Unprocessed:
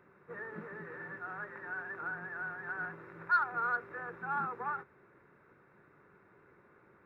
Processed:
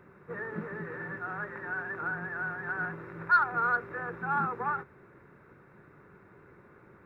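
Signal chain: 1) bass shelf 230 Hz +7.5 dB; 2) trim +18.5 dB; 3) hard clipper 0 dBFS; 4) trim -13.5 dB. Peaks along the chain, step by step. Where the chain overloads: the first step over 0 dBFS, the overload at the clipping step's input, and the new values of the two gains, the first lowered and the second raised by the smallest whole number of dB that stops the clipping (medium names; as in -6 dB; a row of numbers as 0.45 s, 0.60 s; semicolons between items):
-20.0 dBFS, -1.5 dBFS, -1.5 dBFS, -15.0 dBFS; nothing clips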